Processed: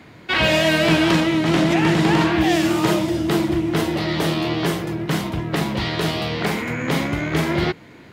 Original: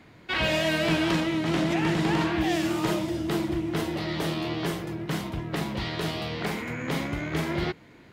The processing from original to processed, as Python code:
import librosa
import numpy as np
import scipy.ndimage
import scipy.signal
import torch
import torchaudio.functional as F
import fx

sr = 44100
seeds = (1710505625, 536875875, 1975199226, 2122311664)

y = scipy.signal.sosfilt(scipy.signal.butter(2, 61.0, 'highpass', fs=sr, output='sos'), x)
y = y * 10.0 ** (8.0 / 20.0)